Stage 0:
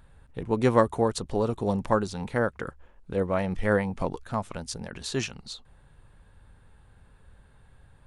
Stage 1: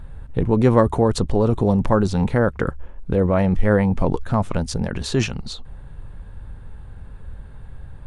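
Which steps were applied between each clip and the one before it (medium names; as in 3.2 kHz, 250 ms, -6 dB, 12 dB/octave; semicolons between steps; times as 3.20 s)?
tilt EQ -2 dB/octave; in parallel at -1 dB: compressor with a negative ratio -27 dBFS, ratio -1; on the sum: trim +2 dB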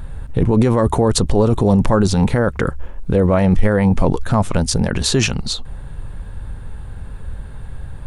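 treble shelf 5.2 kHz +8.5 dB; peak limiter -11.5 dBFS, peak gain reduction 10 dB; trim +7 dB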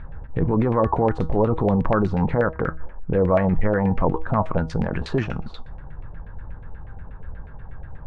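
feedback comb 160 Hz, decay 0.38 s, harmonics all, mix 60%; LFO low-pass saw down 8.3 Hz 620–2300 Hz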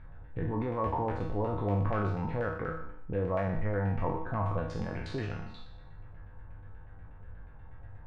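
spectral sustain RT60 0.72 s; feedback comb 100 Hz, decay 0.61 s, harmonics odd, mix 80%; trim -2 dB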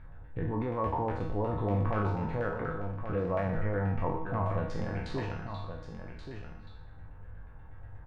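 delay 1129 ms -9 dB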